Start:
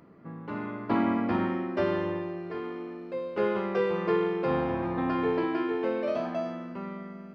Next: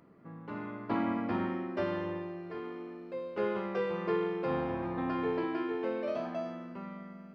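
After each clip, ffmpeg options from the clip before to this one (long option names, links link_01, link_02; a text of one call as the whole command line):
ffmpeg -i in.wav -af "bandreject=frequency=78.26:width_type=h:width=4,bandreject=frequency=156.52:width_type=h:width=4,bandreject=frequency=234.78:width_type=h:width=4,bandreject=frequency=313.04:width_type=h:width=4,bandreject=frequency=391.3:width_type=h:width=4,volume=-5dB" out.wav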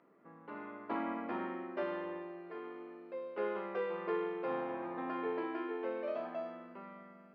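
ffmpeg -i in.wav -af "highpass=330,lowpass=2900,volume=-3dB" out.wav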